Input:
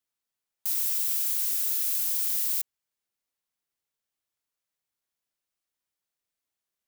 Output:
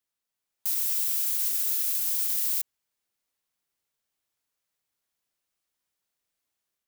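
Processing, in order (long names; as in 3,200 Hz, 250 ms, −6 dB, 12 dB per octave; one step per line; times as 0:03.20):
automatic gain control gain up to 4 dB
brickwall limiter −17 dBFS, peak gain reduction 6.5 dB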